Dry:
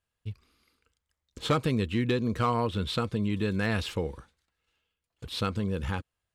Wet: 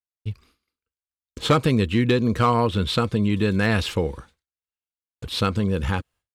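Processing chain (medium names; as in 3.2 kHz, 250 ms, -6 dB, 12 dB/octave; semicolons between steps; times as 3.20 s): expander -55 dBFS; trim +7.5 dB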